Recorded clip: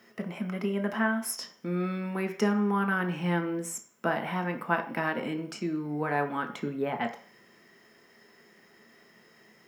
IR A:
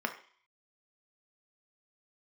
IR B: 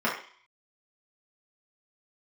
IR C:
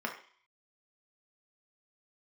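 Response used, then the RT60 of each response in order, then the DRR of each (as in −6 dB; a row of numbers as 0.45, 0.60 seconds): A; 0.50, 0.50, 0.50 seconds; 4.5, −7.0, 0.5 decibels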